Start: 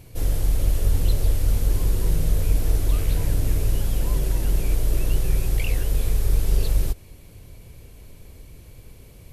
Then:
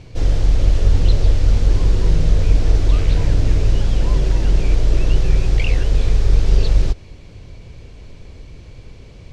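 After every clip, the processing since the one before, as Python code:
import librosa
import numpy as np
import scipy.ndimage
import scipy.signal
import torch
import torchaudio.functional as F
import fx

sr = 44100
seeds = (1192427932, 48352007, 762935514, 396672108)

y = scipy.signal.sosfilt(scipy.signal.butter(4, 6000.0, 'lowpass', fs=sr, output='sos'), x)
y = y * 10.0 ** (6.5 / 20.0)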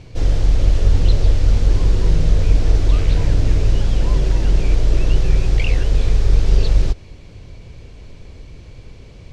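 y = x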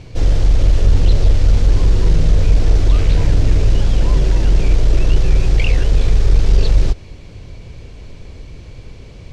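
y = 10.0 ** (-4.5 / 20.0) * np.tanh(x / 10.0 ** (-4.5 / 20.0))
y = y * 10.0 ** (3.5 / 20.0)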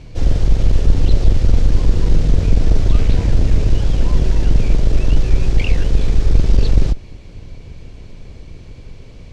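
y = fx.octave_divider(x, sr, octaves=2, level_db=2.0)
y = y * 10.0 ** (-3.0 / 20.0)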